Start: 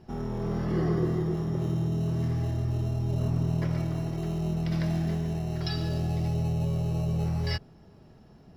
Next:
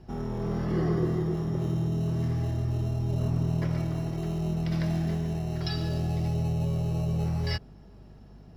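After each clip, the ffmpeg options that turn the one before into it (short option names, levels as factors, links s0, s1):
-af "aeval=exprs='val(0)+0.00316*(sin(2*PI*50*n/s)+sin(2*PI*2*50*n/s)/2+sin(2*PI*3*50*n/s)/3+sin(2*PI*4*50*n/s)/4+sin(2*PI*5*50*n/s)/5)':c=same"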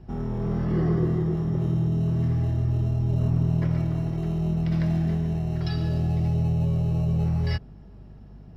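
-af "bass=f=250:g=5,treble=f=4000:g=-7"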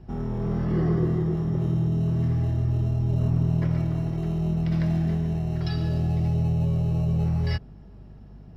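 -af anull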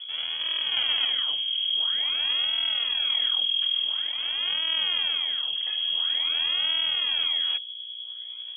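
-af "acrusher=samples=38:mix=1:aa=0.000001:lfo=1:lforange=60.8:lforate=0.48,aeval=exprs='val(0)+0.02*(sin(2*PI*60*n/s)+sin(2*PI*2*60*n/s)/2+sin(2*PI*3*60*n/s)/3+sin(2*PI*4*60*n/s)/4+sin(2*PI*5*60*n/s)/5)':c=same,lowpass=f=2900:t=q:w=0.5098,lowpass=f=2900:t=q:w=0.6013,lowpass=f=2900:t=q:w=0.9,lowpass=f=2900:t=q:w=2.563,afreqshift=-3400,volume=0.708"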